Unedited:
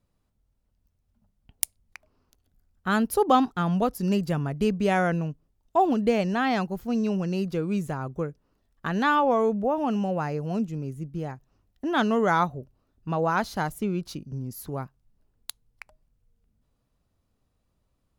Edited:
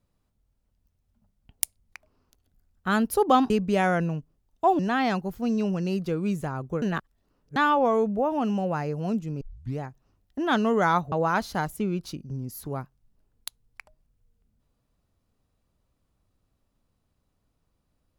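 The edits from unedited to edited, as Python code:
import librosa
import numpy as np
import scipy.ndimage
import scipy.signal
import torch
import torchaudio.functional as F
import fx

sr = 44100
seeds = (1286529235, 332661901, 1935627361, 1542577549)

y = fx.edit(x, sr, fx.cut(start_s=3.5, length_s=1.12),
    fx.cut(start_s=5.91, length_s=0.34),
    fx.reverse_span(start_s=8.28, length_s=0.74),
    fx.tape_start(start_s=10.87, length_s=0.38),
    fx.cut(start_s=12.58, length_s=0.56), tone=tone)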